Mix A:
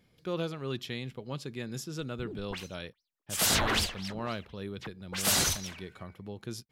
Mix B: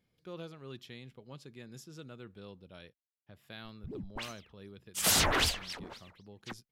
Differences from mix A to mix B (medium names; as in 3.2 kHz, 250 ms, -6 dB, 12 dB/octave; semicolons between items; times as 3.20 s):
speech -11.0 dB; background: entry +1.65 s